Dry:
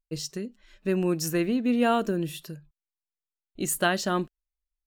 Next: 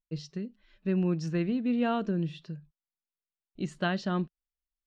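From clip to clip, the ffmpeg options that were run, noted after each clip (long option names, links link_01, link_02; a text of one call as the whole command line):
ffmpeg -i in.wav -af "lowpass=frequency=4800:width=0.5412,lowpass=frequency=4800:width=1.3066,equalizer=frequency=170:width=1.8:gain=9,volume=-7dB" out.wav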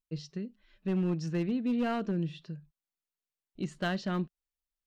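ffmpeg -i in.wav -af "volume=23dB,asoftclip=hard,volume=-23dB,volume=-1.5dB" out.wav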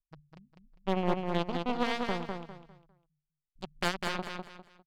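ffmpeg -i in.wav -filter_complex "[0:a]acrossover=split=100[link_01][link_02];[link_01]alimiter=level_in=30.5dB:limit=-24dB:level=0:latency=1,volume=-30.5dB[link_03];[link_02]acrusher=bits=3:mix=0:aa=0.5[link_04];[link_03][link_04]amix=inputs=2:normalize=0,aecho=1:1:201|402|603|804:0.596|0.179|0.0536|0.0161,volume=4dB" out.wav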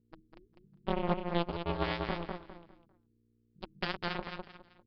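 ffmpeg -i in.wav -af "aresample=11025,aresample=44100,aeval=exprs='val(0)+0.000398*(sin(2*PI*60*n/s)+sin(2*PI*2*60*n/s)/2+sin(2*PI*3*60*n/s)/3+sin(2*PI*4*60*n/s)/4+sin(2*PI*5*60*n/s)/5)':channel_layout=same,aeval=exprs='val(0)*sin(2*PI*170*n/s)':channel_layout=same" out.wav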